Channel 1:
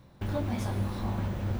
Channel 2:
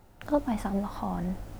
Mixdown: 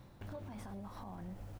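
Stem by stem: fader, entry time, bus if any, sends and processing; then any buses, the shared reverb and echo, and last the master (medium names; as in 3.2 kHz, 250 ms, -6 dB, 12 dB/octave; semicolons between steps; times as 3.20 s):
-1.0 dB, 0.00 s, no send, compression 2.5:1, threshold -36 dBFS, peak gain reduction 7.5 dB; auto duck -16 dB, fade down 0.80 s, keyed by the second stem
-10.0 dB, 7.4 ms, polarity flipped, no send, compression, threshold -30 dBFS, peak gain reduction 10 dB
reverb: none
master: peak limiter -38 dBFS, peak gain reduction 8 dB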